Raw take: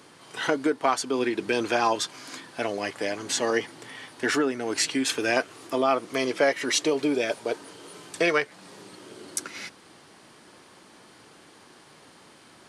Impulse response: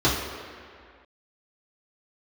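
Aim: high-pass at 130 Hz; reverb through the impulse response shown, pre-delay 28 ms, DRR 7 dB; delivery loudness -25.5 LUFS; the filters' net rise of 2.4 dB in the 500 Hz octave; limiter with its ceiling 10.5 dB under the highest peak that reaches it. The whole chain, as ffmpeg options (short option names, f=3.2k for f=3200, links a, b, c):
-filter_complex "[0:a]highpass=130,equalizer=f=500:t=o:g=3,alimiter=limit=-18dB:level=0:latency=1,asplit=2[a][b];[1:a]atrim=start_sample=2205,adelay=28[c];[b][c]afir=irnorm=-1:irlink=0,volume=-24.5dB[d];[a][d]amix=inputs=2:normalize=0,volume=2.5dB"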